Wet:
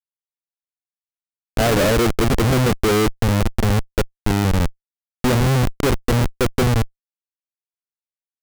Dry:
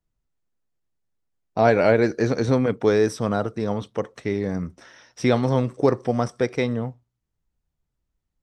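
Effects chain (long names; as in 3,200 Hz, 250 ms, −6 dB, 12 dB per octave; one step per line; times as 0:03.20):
adaptive Wiener filter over 25 samples
tilt shelving filter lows +7.5 dB, about 1,400 Hz
comparator with hysteresis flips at −17 dBFS
level +2.5 dB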